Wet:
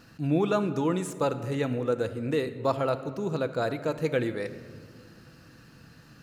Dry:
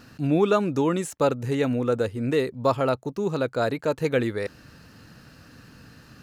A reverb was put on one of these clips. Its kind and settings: simulated room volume 2700 m³, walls mixed, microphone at 0.7 m; trim -4.5 dB

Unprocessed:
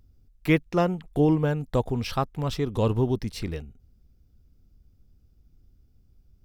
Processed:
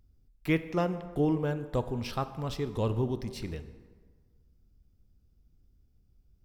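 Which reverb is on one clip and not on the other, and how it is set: plate-style reverb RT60 1.6 s, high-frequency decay 0.6×, DRR 11 dB; trim -6 dB

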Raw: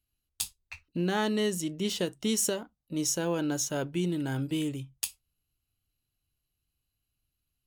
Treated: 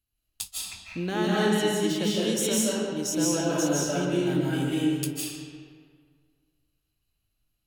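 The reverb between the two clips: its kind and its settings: algorithmic reverb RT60 1.9 s, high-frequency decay 0.65×, pre-delay 120 ms, DRR -6.5 dB; trim -2 dB

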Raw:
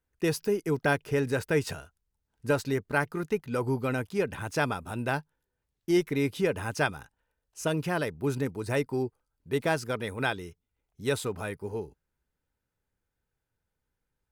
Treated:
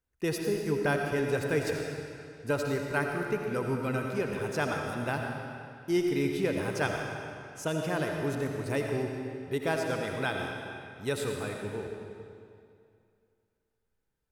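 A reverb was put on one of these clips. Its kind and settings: algorithmic reverb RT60 2.4 s, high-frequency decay 0.9×, pre-delay 40 ms, DRR 1.5 dB; trim -3.5 dB

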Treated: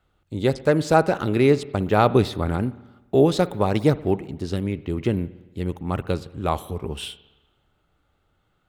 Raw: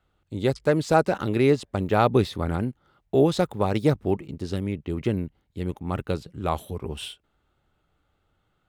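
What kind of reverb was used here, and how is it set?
spring tank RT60 1.1 s, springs 57 ms, chirp 50 ms, DRR 17 dB; trim +2.5 dB

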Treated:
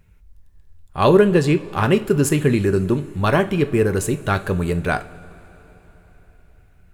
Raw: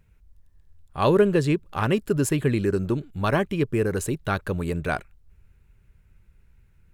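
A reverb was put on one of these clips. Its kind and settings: two-slope reverb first 0.33 s, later 4.2 s, from -20 dB, DRR 8.5 dB; trim +5 dB

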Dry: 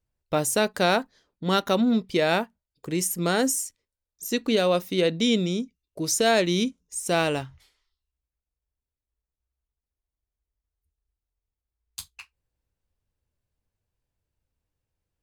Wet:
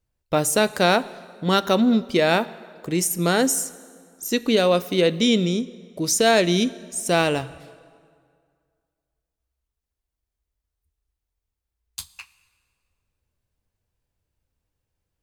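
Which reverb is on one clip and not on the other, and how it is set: plate-style reverb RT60 2.1 s, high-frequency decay 0.75×, DRR 17 dB; trim +3.5 dB

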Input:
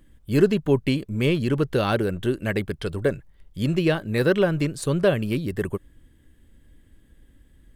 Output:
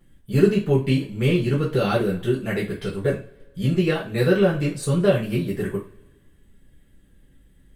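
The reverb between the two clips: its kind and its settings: two-slope reverb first 0.3 s, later 1.5 s, from -25 dB, DRR -7.5 dB; trim -8 dB

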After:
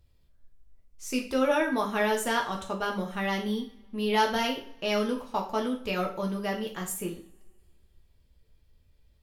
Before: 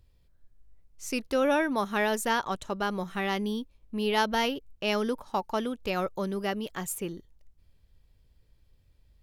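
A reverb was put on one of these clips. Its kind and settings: two-slope reverb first 0.38 s, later 2 s, from -28 dB, DRR 0.5 dB; trim -2.5 dB

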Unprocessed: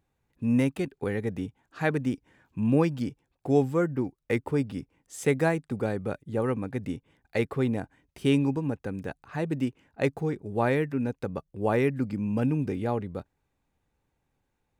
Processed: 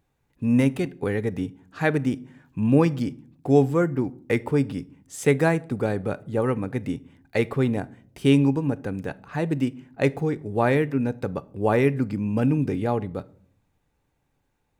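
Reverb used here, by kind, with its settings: simulated room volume 740 m³, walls furnished, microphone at 0.34 m; trim +4 dB

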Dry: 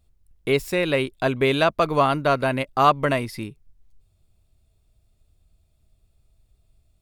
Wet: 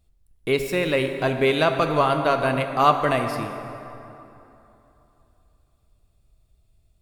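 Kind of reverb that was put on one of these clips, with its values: plate-style reverb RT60 3.1 s, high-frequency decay 0.6×, DRR 5.5 dB; trim -1 dB

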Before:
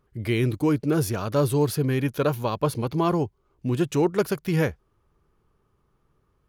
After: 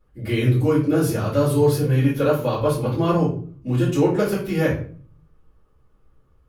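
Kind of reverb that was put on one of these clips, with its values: simulated room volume 38 m³, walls mixed, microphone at 2.3 m; trim -9.5 dB

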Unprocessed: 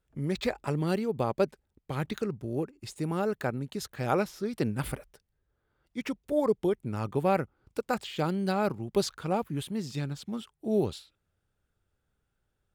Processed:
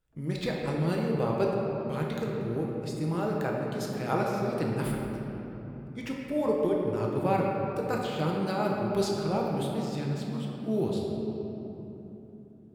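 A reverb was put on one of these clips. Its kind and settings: simulated room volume 210 m³, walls hard, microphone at 0.61 m; trim -3.5 dB

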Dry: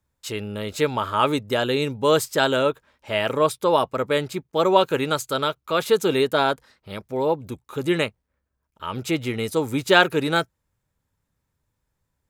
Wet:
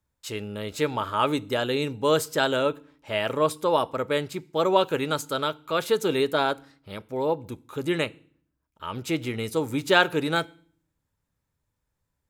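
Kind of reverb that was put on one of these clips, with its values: FDN reverb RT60 0.49 s, low-frequency decay 1.6×, high-frequency decay 1×, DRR 18.5 dB; trim -3.5 dB

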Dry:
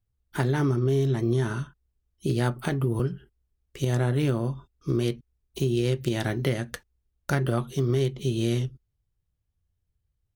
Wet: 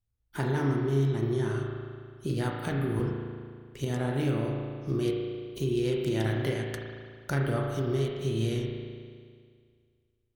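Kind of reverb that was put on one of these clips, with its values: spring tank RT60 2 s, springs 36 ms, chirp 45 ms, DRR 0 dB; trim -5.5 dB

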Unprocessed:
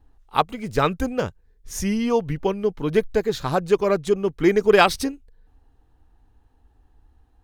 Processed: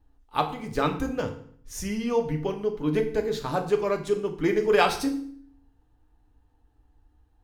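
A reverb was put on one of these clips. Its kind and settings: FDN reverb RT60 0.57 s, low-frequency decay 1.35×, high-frequency decay 0.9×, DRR 3.5 dB; trim -6.5 dB

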